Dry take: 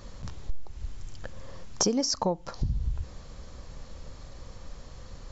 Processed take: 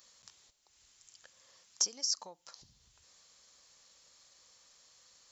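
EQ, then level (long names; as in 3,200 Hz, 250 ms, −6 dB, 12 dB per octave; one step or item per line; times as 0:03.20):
first difference
−1.0 dB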